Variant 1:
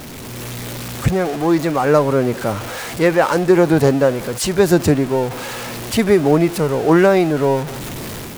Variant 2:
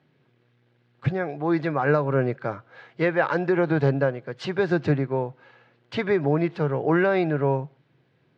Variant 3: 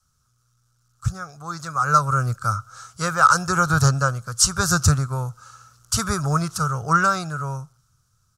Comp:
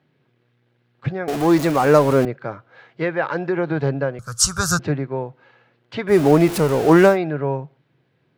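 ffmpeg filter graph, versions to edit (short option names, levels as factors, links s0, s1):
-filter_complex "[0:a]asplit=2[s0][s1];[1:a]asplit=4[s2][s3][s4][s5];[s2]atrim=end=1.282[s6];[s0]atrim=start=1.278:end=2.252[s7];[s3]atrim=start=2.248:end=4.192[s8];[2:a]atrim=start=4.188:end=4.792[s9];[s4]atrim=start=4.788:end=6.17[s10];[s1]atrim=start=6.07:end=7.18[s11];[s5]atrim=start=7.08[s12];[s6][s7]acrossfade=d=0.004:c1=hsin:c2=hsin[s13];[s13][s8]acrossfade=d=0.004:c1=hsin:c2=hsin[s14];[s14][s9]acrossfade=d=0.004:c1=hsin:c2=hsin[s15];[s15][s10]acrossfade=d=0.004:c1=hsin:c2=hsin[s16];[s16][s11]acrossfade=d=0.1:c1=tri:c2=tri[s17];[s17][s12]acrossfade=d=0.1:c1=tri:c2=tri"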